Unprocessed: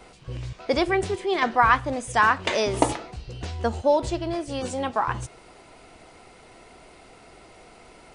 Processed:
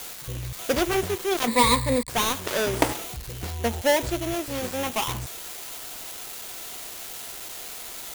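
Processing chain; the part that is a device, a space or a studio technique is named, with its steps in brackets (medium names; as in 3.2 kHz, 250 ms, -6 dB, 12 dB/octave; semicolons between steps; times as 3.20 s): budget class-D amplifier (dead-time distortion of 0.3 ms; zero-crossing glitches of -19 dBFS); 1.47–2.09 s: rippled EQ curve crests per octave 0.97, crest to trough 17 dB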